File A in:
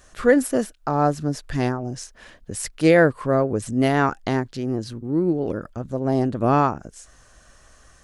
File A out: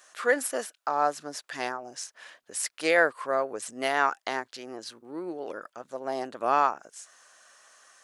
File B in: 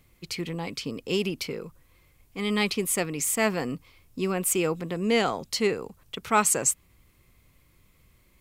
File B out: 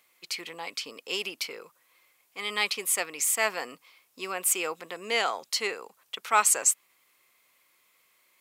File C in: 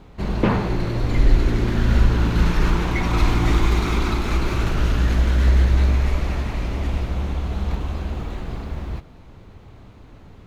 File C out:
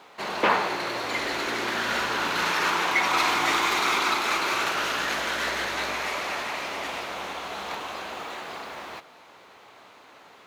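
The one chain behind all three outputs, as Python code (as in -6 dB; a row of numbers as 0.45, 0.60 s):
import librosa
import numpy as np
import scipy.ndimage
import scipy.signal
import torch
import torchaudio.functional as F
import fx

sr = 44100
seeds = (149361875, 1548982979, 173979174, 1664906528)

y = scipy.signal.sosfilt(scipy.signal.butter(2, 740.0, 'highpass', fs=sr, output='sos'), x)
y = y * 10.0 ** (-9 / 20.0) / np.max(np.abs(y))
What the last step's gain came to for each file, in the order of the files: -1.0, +1.0, +6.0 dB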